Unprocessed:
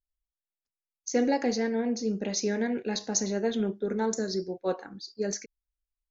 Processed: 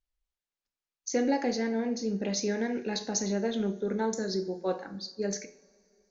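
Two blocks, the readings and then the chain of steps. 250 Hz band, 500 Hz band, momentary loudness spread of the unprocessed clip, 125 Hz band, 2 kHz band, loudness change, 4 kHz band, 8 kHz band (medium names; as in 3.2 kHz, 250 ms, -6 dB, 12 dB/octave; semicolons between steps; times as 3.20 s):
-1.0 dB, -1.5 dB, 7 LU, 0.0 dB, -1.0 dB, -1.5 dB, -0.5 dB, no reading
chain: low-pass 6.6 kHz 12 dB/octave; de-hum 85.7 Hz, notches 8; in parallel at +1 dB: compression, threshold -37 dBFS, peak gain reduction 15.5 dB; on the sum: two-slope reverb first 0.48 s, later 3.2 s, from -22 dB, DRR 9.5 dB; trim -3.5 dB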